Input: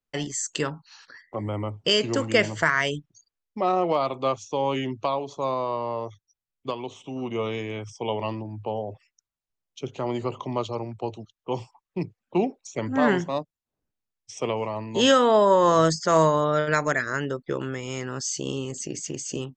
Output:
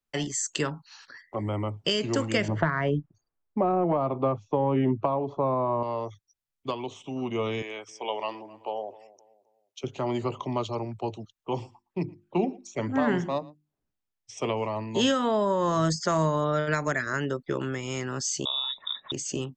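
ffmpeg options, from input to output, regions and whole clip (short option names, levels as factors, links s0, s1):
-filter_complex "[0:a]asettb=1/sr,asplit=3[s0][s1][s2];[s0]atrim=end=2.484[s3];[s1]atrim=start=2.48:end=5.83,asetpts=PTS-STARTPTS,afade=t=in:d=0.004:c=qsin,afade=t=out:st=3.346:d=0.004:c=qsin,lowpass=1200,acontrast=72[s4];[s2]atrim=start=5.826[s5];[s3][s4]acrossfade=d=0.004:c1=hsin:c2=qsin[s6];[s6][s5]acrossfade=d=0.004:c1=qsin:c2=hsin,asettb=1/sr,asplit=3[s7][s8][s9];[s7]atrim=end=7.624[s10];[s8]atrim=start=7.62:end=9.84,asetpts=PTS-STARTPTS,afade=t=in:d=0.004:c=qsin,afade=t=out:st=2.216:d=0.004:c=qsin,highpass=500,asplit=2[s11][s12];[s12]adelay=262,lowpass=f=1500:p=1,volume=0.119,asplit=2[s13][s14];[s14]adelay=262,lowpass=f=1500:p=1,volume=0.38,asplit=2[s15][s16];[s16]adelay=262,lowpass=f=1500:p=1,volume=0.38[s17];[s11][s13][s15][s17]amix=inputs=4:normalize=0,atrim=end_sample=97902[s18];[s9]atrim=start=9.836[s19];[s10][s18]acrossfade=d=0.004:c1=hsin:c2=qsin[s20];[s20][s19]acrossfade=d=0.004:c1=qsin:c2=hsin,asettb=1/sr,asplit=3[s21][s22][s23];[s21]atrim=end=11.514[s24];[s22]atrim=start=11.51:end=14.38,asetpts=PTS-STARTPTS,afade=t=in:d=0.004:c=qsin,afade=t=out:st=2.866:d=0.004:c=qsin,highshelf=f=4200:g=-5.5,bandreject=f=50:t=h:w=6,bandreject=f=100:t=h:w=6,bandreject=f=150:t=h:w=6,bandreject=f=200:t=h:w=6,bandreject=f=250:t=h:w=6,bandreject=f=300:t=h:w=6,bandreject=f=350:t=h:w=6,aecho=1:1:115:0.0668,atrim=end_sample=126567[s25];[s23]atrim=start=14.376[s26];[s24][s25]acrossfade=d=0.004:c1=hsin:c2=qsin[s27];[s27][s26]acrossfade=d=0.004:c1=qsin:c2=hsin,asettb=1/sr,asplit=3[s28][s29][s30];[s28]atrim=end=18.454[s31];[s29]atrim=start=18.45:end=19.12,asetpts=PTS-STARTPTS,afade=t=in:d=0.004:c=qsin,afade=t=out:st=0.666:d=0.004:c=qsin,aecho=1:1:2.4:0.42,atrim=end_sample=29547,lowpass=f=3300:t=q:w=0.5098,lowpass=f=3300:t=q:w=0.6013,lowpass=f=3300:t=q:w=0.9,lowpass=f=3300:t=q:w=2.563,afreqshift=-3900[s32];[s30]atrim=start=19.116[s33];[s31][s32]acrossfade=d=0.004:c1=hsin:c2=qsin[s34];[s34][s33]acrossfade=d=0.004:c1=qsin:c2=hsin,bandreject=f=490:w=12,acrossover=split=260[s35][s36];[s36]acompressor=threshold=0.0708:ratio=10[s37];[s35][s37]amix=inputs=2:normalize=0"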